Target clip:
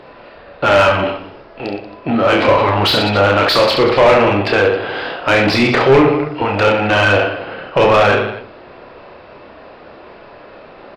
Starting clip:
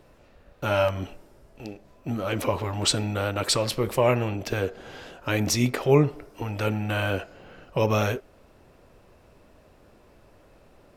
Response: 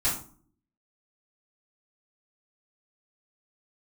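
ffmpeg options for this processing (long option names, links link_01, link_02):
-filter_complex "[0:a]aresample=11025,aresample=44100,aecho=1:1:30|69|119.7|185.6|271.3:0.631|0.398|0.251|0.158|0.1,asplit=2[link_01][link_02];[1:a]atrim=start_sample=2205,adelay=36[link_03];[link_02][link_03]afir=irnorm=-1:irlink=0,volume=-24.5dB[link_04];[link_01][link_04]amix=inputs=2:normalize=0,asplit=2[link_05][link_06];[link_06]highpass=frequency=720:poles=1,volume=24dB,asoftclip=type=tanh:threshold=-4.5dB[link_07];[link_05][link_07]amix=inputs=2:normalize=0,lowpass=frequency=2100:poles=1,volume=-6dB,volume=3.5dB"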